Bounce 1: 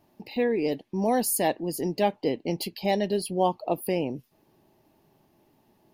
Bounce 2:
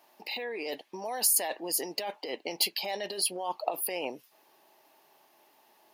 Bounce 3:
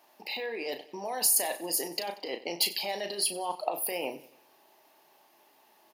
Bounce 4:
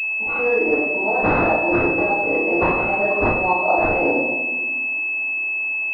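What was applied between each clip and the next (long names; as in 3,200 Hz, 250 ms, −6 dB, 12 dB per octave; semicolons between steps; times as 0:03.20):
compressor whose output falls as the input rises −29 dBFS, ratio −1; high-pass filter 770 Hz 12 dB per octave; level +4 dB
double-tracking delay 35 ms −8.5 dB; repeating echo 93 ms, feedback 49%, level −18 dB
convolution reverb RT60 1.3 s, pre-delay 3 ms, DRR −12.5 dB; switching amplifier with a slow clock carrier 2,600 Hz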